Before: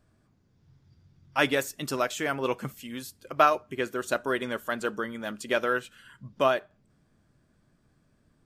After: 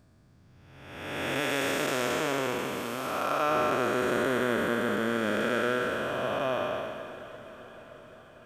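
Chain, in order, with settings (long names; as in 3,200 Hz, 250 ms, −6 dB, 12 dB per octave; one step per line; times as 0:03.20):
spectrum smeared in time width 663 ms
0:01.40–0:03.51: low-shelf EQ 230 Hz −8 dB
feedback delay with all-pass diffusion 548 ms, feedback 61%, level −15 dB
level +8 dB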